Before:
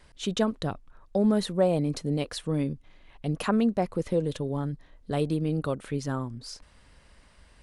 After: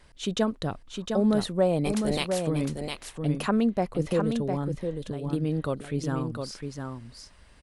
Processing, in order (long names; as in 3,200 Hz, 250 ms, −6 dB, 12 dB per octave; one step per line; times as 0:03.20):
0:01.84–0:02.46: ceiling on every frequency bin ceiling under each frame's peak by 25 dB
0:04.69–0:05.33: compressor whose output falls as the input rises −36 dBFS, ratio −1
single-tap delay 707 ms −5.5 dB